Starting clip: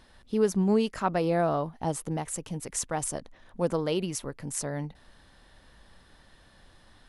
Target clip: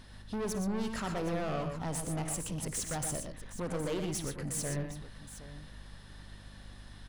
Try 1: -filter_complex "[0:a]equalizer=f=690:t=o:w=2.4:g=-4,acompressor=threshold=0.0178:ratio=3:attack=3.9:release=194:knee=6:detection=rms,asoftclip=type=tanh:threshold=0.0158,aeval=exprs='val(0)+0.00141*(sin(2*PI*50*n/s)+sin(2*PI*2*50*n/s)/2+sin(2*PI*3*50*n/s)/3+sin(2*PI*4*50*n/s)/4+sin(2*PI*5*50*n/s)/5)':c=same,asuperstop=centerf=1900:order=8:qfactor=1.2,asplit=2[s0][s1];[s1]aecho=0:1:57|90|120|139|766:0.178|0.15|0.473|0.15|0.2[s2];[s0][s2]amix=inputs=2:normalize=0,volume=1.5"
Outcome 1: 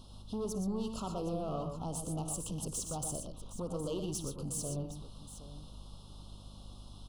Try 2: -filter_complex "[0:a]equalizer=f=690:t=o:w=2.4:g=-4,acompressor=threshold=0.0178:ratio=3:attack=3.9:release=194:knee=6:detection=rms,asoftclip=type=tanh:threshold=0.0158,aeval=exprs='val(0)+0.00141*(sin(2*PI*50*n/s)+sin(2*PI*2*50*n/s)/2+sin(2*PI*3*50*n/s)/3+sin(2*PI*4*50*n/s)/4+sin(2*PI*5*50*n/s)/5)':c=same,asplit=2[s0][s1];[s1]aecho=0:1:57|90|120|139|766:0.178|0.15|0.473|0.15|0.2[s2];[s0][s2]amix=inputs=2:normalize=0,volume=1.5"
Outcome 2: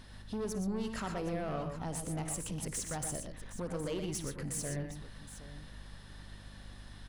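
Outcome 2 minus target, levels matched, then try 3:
compression: peak gain reduction +6.5 dB
-filter_complex "[0:a]equalizer=f=690:t=o:w=2.4:g=-4,acompressor=threshold=0.0562:ratio=3:attack=3.9:release=194:knee=6:detection=rms,asoftclip=type=tanh:threshold=0.0158,aeval=exprs='val(0)+0.00141*(sin(2*PI*50*n/s)+sin(2*PI*2*50*n/s)/2+sin(2*PI*3*50*n/s)/3+sin(2*PI*4*50*n/s)/4+sin(2*PI*5*50*n/s)/5)':c=same,asplit=2[s0][s1];[s1]aecho=0:1:57|90|120|139|766:0.178|0.15|0.473|0.15|0.2[s2];[s0][s2]amix=inputs=2:normalize=0,volume=1.5"

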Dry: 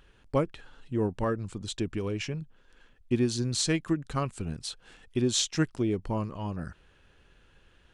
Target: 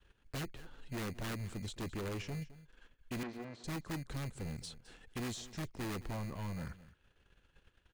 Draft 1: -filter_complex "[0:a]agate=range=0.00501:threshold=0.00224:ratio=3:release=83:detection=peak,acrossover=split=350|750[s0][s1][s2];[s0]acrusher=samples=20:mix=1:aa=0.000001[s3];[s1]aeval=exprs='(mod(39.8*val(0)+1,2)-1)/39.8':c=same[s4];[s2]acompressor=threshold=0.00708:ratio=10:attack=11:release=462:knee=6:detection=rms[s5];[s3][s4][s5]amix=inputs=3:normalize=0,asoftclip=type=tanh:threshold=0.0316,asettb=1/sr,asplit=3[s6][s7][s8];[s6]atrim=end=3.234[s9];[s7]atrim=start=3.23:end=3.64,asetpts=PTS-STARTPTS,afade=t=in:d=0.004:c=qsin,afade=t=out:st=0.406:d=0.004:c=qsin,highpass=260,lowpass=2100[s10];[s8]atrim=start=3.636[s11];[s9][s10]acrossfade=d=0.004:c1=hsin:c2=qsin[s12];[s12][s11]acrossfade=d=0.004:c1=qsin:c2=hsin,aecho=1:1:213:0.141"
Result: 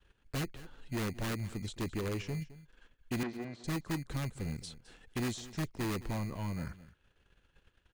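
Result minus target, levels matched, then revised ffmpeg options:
saturation: distortion -5 dB
-filter_complex "[0:a]agate=range=0.00501:threshold=0.00224:ratio=3:release=83:detection=peak,acrossover=split=350|750[s0][s1][s2];[s0]acrusher=samples=20:mix=1:aa=0.000001[s3];[s1]aeval=exprs='(mod(39.8*val(0)+1,2)-1)/39.8':c=same[s4];[s2]acompressor=threshold=0.00708:ratio=10:attack=11:release=462:knee=6:detection=rms[s5];[s3][s4][s5]amix=inputs=3:normalize=0,asoftclip=type=tanh:threshold=0.0141,asettb=1/sr,asplit=3[s6][s7][s8];[s6]atrim=end=3.234[s9];[s7]atrim=start=3.23:end=3.64,asetpts=PTS-STARTPTS,afade=t=in:d=0.004:c=qsin,afade=t=out:st=0.406:d=0.004:c=qsin,highpass=260,lowpass=2100[s10];[s8]atrim=start=3.636[s11];[s9][s10]acrossfade=d=0.004:c1=hsin:c2=qsin[s12];[s12][s11]acrossfade=d=0.004:c1=qsin:c2=hsin,aecho=1:1:213:0.141"

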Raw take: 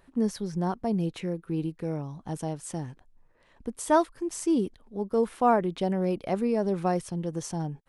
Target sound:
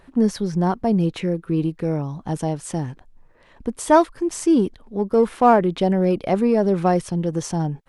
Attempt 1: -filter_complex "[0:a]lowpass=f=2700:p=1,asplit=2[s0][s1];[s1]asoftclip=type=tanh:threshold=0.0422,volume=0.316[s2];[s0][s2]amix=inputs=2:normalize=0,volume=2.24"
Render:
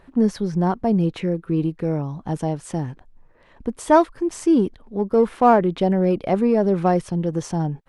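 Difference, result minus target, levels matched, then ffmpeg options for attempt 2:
8 kHz band -5.0 dB
-filter_complex "[0:a]lowpass=f=6000:p=1,asplit=2[s0][s1];[s1]asoftclip=type=tanh:threshold=0.0422,volume=0.316[s2];[s0][s2]amix=inputs=2:normalize=0,volume=2.24"

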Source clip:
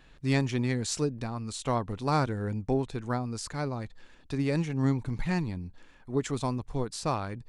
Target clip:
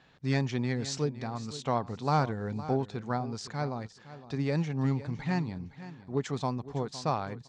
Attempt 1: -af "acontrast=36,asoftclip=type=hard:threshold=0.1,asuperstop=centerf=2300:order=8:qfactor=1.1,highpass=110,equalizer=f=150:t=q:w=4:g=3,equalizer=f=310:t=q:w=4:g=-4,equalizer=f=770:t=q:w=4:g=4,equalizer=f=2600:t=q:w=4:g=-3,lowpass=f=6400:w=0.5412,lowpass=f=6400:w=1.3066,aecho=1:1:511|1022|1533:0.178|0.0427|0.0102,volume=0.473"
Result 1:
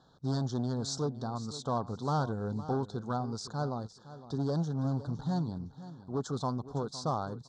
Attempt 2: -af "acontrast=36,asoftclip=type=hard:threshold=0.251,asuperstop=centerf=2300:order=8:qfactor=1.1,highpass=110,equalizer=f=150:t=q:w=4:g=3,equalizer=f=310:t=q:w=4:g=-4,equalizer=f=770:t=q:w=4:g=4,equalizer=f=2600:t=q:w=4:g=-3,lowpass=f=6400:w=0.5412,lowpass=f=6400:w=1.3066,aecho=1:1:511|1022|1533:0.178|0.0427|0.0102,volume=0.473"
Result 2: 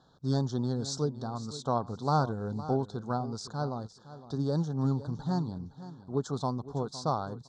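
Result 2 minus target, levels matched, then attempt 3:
2 kHz band -9.0 dB
-af "acontrast=36,asoftclip=type=hard:threshold=0.251,highpass=110,equalizer=f=150:t=q:w=4:g=3,equalizer=f=310:t=q:w=4:g=-4,equalizer=f=770:t=q:w=4:g=4,equalizer=f=2600:t=q:w=4:g=-3,lowpass=f=6400:w=0.5412,lowpass=f=6400:w=1.3066,aecho=1:1:511|1022|1533:0.178|0.0427|0.0102,volume=0.473"

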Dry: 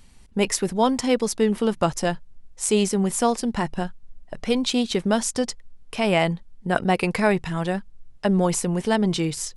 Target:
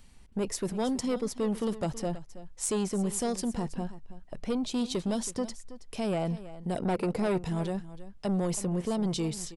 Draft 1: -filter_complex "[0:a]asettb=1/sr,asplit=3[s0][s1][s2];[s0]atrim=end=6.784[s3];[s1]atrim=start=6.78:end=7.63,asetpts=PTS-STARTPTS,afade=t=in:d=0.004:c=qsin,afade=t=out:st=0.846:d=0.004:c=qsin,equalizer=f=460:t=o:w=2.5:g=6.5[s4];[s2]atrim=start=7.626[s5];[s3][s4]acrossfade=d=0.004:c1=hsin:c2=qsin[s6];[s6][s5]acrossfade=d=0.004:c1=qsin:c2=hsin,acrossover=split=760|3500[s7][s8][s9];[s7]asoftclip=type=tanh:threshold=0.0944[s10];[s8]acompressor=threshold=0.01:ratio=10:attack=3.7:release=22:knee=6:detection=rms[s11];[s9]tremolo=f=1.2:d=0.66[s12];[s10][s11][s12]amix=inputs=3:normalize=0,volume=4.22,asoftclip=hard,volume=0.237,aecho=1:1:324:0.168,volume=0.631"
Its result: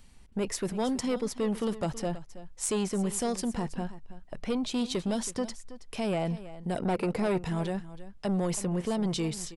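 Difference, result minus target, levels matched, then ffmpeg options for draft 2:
compression: peak gain reduction -7 dB
-filter_complex "[0:a]asettb=1/sr,asplit=3[s0][s1][s2];[s0]atrim=end=6.784[s3];[s1]atrim=start=6.78:end=7.63,asetpts=PTS-STARTPTS,afade=t=in:d=0.004:c=qsin,afade=t=out:st=0.846:d=0.004:c=qsin,equalizer=f=460:t=o:w=2.5:g=6.5[s4];[s2]atrim=start=7.626[s5];[s3][s4]acrossfade=d=0.004:c1=hsin:c2=qsin[s6];[s6][s5]acrossfade=d=0.004:c1=qsin:c2=hsin,acrossover=split=760|3500[s7][s8][s9];[s7]asoftclip=type=tanh:threshold=0.0944[s10];[s8]acompressor=threshold=0.00398:ratio=10:attack=3.7:release=22:knee=6:detection=rms[s11];[s9]tremolo=f=1.2:d=0.66[s12];[s10][s11][s12]amix=inputs=3:normalize=0,volume=4.22,asoftclip=hard,volume=0.237,aecho=1:1:324:0.168,volume=0.631"

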